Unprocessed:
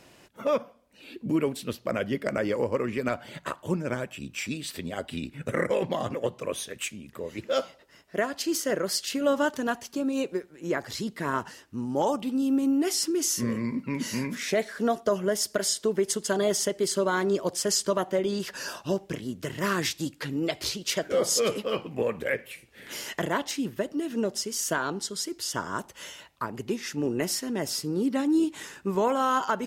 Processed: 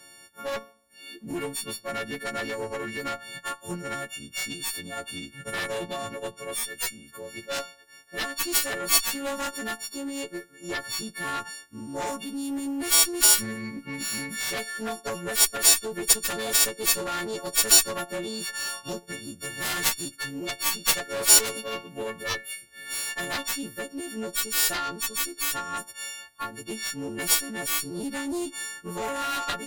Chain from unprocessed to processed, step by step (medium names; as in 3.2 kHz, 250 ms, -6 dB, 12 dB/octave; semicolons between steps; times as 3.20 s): partials quantised in pitch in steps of 4 st; graphic EQ with 31 bands 1.6 kHz +10 dB, 4 kHz +5 dB, 10 kHz +8 dB; Chebyshev shaper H 4 -13 dB, 5 -21 dB, 6 -14 dB, 7 -10 dB, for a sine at 0 dBFS; trim -3 dB